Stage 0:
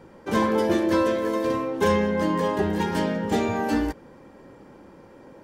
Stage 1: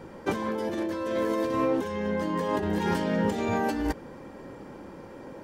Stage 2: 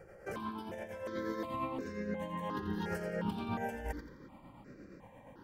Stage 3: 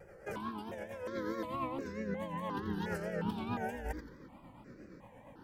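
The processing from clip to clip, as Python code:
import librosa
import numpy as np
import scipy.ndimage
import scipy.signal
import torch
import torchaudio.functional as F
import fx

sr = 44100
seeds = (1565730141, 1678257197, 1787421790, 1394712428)

y1 = fx.over_compress(x, sr, threshold_db=-28.0, ratio=-1.0)
y2 = y1 * (1.0 - 0.47 / 2.0 + 0.47 / 2.0 * np.cos(2.0 * np.pi * 8.5 * (np.arange(len(y1)) / sr)))
y2 = fx.echo_feedback(y2, sr, ms=86, feedback_pct=39, wet_db=-9.5)
y2 = fx.phaser_held(y2, sr, hz=2.8, low_hz=980.0, high_hz=3200.0)
y2 = F.gain(torch.from_numpy(y2), -5.5).numpy()
y3 = fx.vibrato(y2, sr, rate_hz=4.6, depth_cents=87.0)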